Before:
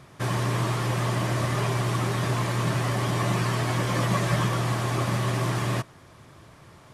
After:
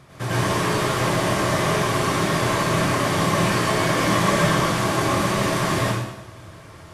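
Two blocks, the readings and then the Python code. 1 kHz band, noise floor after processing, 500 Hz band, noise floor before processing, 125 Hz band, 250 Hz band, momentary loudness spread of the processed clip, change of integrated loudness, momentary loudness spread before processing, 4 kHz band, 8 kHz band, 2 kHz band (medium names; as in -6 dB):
+7.5 dB, -43 dBFS, +8.0 dB, -51 dBFS, 0.0 dB, +6.5 dB, 4 LU, +5.0 dB, 2 LU, +7.5 dB, +8.0 dB, +8.0 dB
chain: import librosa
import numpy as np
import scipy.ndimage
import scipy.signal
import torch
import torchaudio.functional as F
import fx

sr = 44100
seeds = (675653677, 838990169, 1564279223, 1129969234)

y = fx.rev_plate(x, sr, seeds[0], rt60_s=0.91, hf_ratio=0.95, predelay_ms=80, drr_db=-7.0)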